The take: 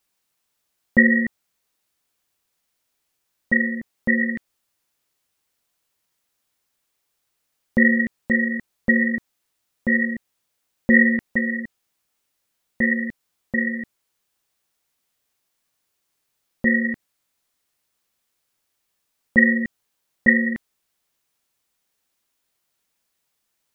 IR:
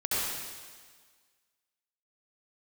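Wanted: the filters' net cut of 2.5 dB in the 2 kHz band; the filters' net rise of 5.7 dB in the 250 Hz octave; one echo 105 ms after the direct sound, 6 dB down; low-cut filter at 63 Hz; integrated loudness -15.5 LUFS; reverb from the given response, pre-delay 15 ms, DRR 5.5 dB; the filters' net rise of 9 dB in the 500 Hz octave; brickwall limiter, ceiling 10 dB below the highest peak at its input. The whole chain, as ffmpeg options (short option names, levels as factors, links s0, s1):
-filter_complex "[0:a]highpass=63,equalizer=f=250:t=o:g=4.5,equalizer=f=500:t=o:g=9,equalizer=f=2000:t=o:g=-3,alimiter=limit=0.316:level=0:latency=1,aecho=1:1:105:0.501,asplit=2[s0][s1];[1:a]atrim=start_sample=2205,adelay=15[s2];[s1][s2]afir=irnorm=-1:irlink=0,volume=0.178[s3];[s0][s3]amix=inputs=2:normalize=0,volume=1.78"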